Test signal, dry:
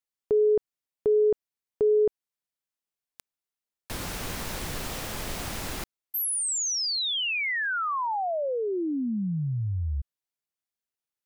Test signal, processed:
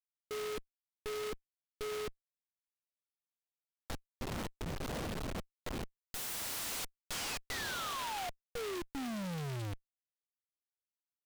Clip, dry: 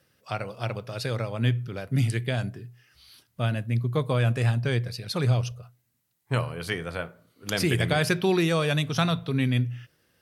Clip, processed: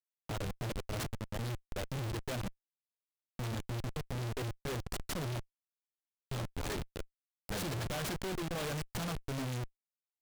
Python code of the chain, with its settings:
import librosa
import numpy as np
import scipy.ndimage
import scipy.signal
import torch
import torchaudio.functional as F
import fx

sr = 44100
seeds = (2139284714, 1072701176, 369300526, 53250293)

y = fx.dereverb_blind(x, sr, rt60_s=1.9)
y = fx.step_gate(y, sr, bpm=114, pattern='x.xxxxxx..x', floor_db=-12.0, edge_ms=4.5)
y = fx.schmitt(y, sr, flips_db=-35.0)
y = fx.noise_mod_delay(y, sr, seeds[0], noise_hz=2000.0, depth_ms=0.089)
y = y * librosa.db_to_amplitude(-6.5)